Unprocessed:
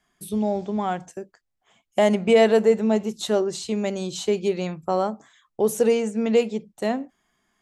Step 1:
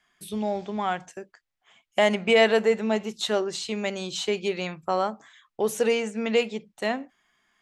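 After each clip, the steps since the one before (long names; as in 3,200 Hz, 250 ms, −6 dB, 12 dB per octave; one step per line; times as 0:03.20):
parametric band 2,300 Hz +11.5 dB 2.9 octaves
level −6.5 dB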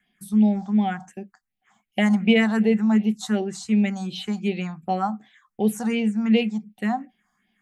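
hollow resonant body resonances 210/760 Hz, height 14 dB, ringing for 65 ms
all-pass phaser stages 4, 2.7 Hz, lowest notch 420–1,300 Hz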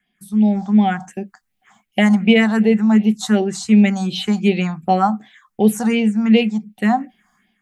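automatic gain control gain up to 12.5 dB
level −1 dB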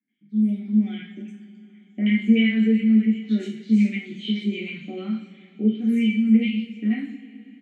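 formant filter i
three-band delay without the direct sound lows, mids, highs 80/200 ms, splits 1,400/4,500 Hz
coupled-rooms reverb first 0.42 s, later 3.4 s, from −20 dB, DRR −2.5 dB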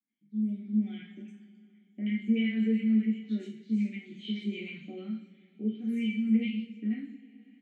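rotating-speaker cabinet horn 0.6 Hz
level −8 dB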